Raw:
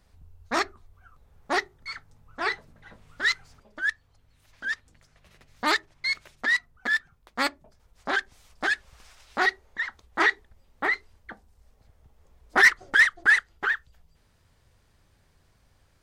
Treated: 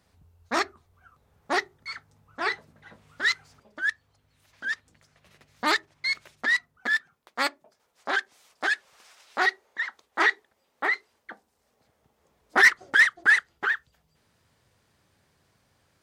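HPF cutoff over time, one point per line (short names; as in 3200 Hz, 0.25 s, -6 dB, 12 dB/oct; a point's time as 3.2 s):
6.54 s 98 Hz
7.39 s 330 Hz
10.92 s 330 Hz
13 s 120 Hz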